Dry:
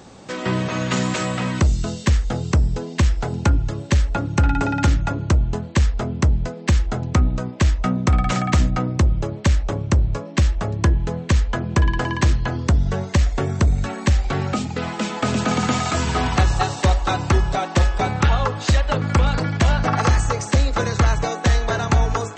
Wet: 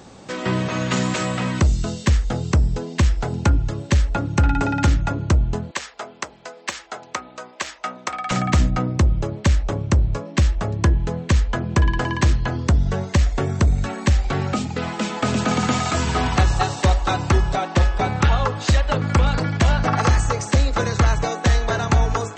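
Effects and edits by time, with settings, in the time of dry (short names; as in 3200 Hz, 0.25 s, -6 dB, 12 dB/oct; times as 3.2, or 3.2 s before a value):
5.71–8.31 HPF 700 Hz
17.56–18.12 air absorption 50 m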